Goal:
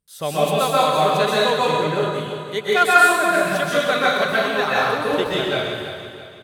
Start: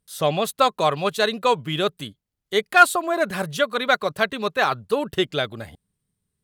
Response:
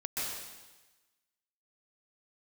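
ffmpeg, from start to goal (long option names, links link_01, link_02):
-filter_complex "[0:a]asettb=1/sr,asplit=3[link_01][link_02][link_03];[link_01]atrim=end=1.574[link_04];[link_02]atrim=start=1.57:end=2.01,asetpts=PTS-STARTPTS,afade=type=in:duration=0.004:curve=qsin,afade=type=out:start_time=0.436:duration=0.004:curve=qsin,lowpass=frequency=2100:width=0.5412,lowpass=frequency=2100:width=1.3066[link_05];[link_03]atrim=start=2.006[link_06];[link_04][link_05]acrossfade=duration=0.004:curve1=hsin:curve2=qsin[link_07];[link_07][link_06]acrossfade=duration=0.004:curve1=qsin:curve2=hsin,aecho=1:1:332|664|996|1328:0.316|0.133|0.0558|0.0234[link_08];[1:a]atrim=start_sample=2205[link_09];[link_08][link_09]afir=irnorm=-1:irlink=0,volume=-1.5dB"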